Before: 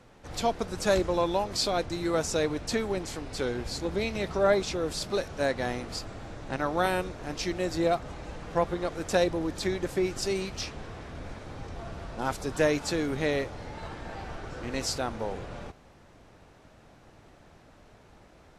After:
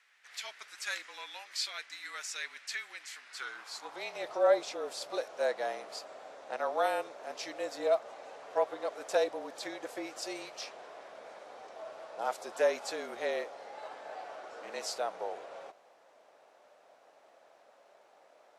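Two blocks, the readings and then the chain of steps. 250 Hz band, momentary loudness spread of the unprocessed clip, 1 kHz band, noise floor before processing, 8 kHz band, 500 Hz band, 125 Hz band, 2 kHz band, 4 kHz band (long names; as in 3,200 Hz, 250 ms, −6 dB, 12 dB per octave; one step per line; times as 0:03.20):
−17.0 dB, 14 LU, −4.5 dB, −56 dBFS, −7.0 dB, −5.0 dB, below −30 dB, −5.0 dB, −6.0 dB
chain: frequency shifter −36 Hz
high-pass filter sweep 1,900 Hz → 610 Hz, 0:03.14–0:04.28
level −7 dB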